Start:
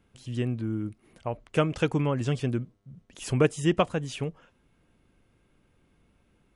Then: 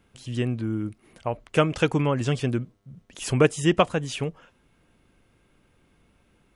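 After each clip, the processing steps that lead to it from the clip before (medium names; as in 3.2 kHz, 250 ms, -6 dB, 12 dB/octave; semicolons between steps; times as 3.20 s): bass shelf 490 Hz -3.5 dB; trim +5.5 dB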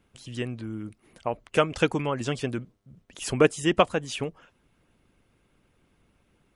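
harmonic-percussive split harmonic -8 dB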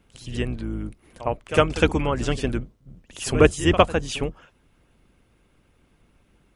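octave divider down 2 oct, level -1 dB; pre-echo 58 ms -14 dB; trim +3.5 dB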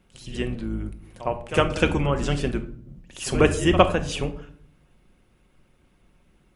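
simulated room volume 790 m³, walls furnished, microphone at 1 m; trim -1.5 dB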